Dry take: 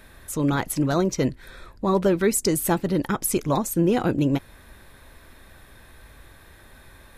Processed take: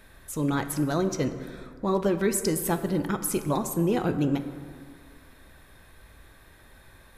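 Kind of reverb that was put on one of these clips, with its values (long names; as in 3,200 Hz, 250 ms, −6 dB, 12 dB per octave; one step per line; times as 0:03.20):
dense smooth reverb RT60 2 s, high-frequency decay 0.45×, DRR 8.5 dB
level −4.5 dB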